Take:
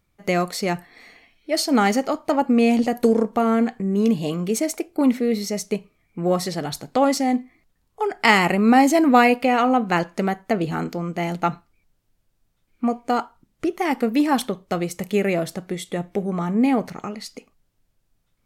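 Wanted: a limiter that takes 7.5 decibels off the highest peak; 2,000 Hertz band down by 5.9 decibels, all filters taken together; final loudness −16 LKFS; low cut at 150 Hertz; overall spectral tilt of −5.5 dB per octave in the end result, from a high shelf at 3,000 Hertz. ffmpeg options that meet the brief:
ffmpeg -i in.wav -af "highpass=150,equalizer=frequency=2000:width_type=o:gain=-5.5,highshelf=frequency=3000:gain=-4,volume=7.5dB,alimiter=limit=-3.5dB:level=0:latency=1" out.wav

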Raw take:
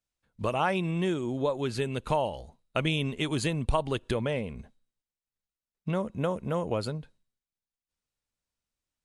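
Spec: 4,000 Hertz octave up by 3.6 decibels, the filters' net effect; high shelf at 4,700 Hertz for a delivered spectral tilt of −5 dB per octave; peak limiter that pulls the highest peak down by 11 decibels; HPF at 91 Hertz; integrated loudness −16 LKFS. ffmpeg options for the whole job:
ffmpeg -i in.wav -af "highpass=91,equalizer=frequency=4000:width_type=o:gain=8.5,highshelf=frequency=4700:gain=-8.5,volume=18dB,alimiter=limit=-5dB:level=0:latency=1" out.wav

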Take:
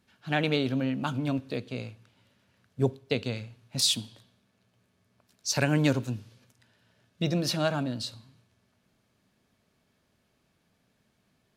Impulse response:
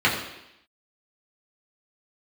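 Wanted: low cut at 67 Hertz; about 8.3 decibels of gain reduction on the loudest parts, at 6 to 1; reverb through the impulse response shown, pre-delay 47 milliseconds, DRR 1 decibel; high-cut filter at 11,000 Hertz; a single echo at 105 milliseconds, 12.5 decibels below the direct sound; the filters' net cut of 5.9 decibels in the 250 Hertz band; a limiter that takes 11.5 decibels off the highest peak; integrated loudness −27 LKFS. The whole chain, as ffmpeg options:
-filter_complex "[0:a]highpass=67,lowpass=11000,equalizer=frequency=250:width_type=o:gain=-8,acompressor=threshold=-30dB:ratio=6,alimiter=level_in=3.5dB:limit=-24dB:level=0:latency=1,volume=-3.5dB,aecho=1:1:105:0.237,asplit=2[link_01][link_02];[1:a]atrim=start_sample=2205,adelay=47[link_03];[link_02][link_03]afir=irnorm=-1:irlink=0,volume=-19.5dB[link_04];[link_01][link_04]amix=inputs=2:normalize=0,volume=10.5dB"

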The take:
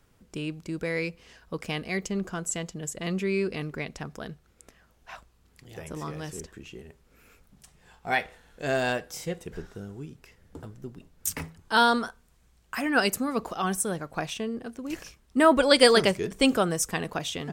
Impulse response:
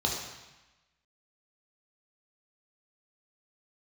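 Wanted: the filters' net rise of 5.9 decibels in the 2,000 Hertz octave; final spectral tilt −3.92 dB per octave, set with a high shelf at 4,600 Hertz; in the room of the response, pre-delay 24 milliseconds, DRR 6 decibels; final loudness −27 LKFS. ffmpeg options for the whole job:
-filter_complex "[0:a]equalizer=frequency=2000:width_type=o:gain=8.5,highshelf=frequency=4600:gain=-4.5,asplit=2[link_01][link_02];[1:a]atrim=start_sample=2205,adelay=24[link_03];[link_02][link_03]afir=irnorm=-1:irlink=0,volume=-14.5dB[link_04];[link_01][link_04]amix=inputs=2:normalize=0,volume=-3dB"

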